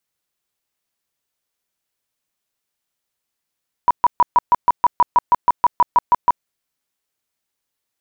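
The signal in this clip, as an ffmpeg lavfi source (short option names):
-f lavfi -i "aevalsrc='0.398*sin(2*PI*974*mod(t,0.16))*lt(mod(t,0.16),26/974)':d=2.56:s=44100"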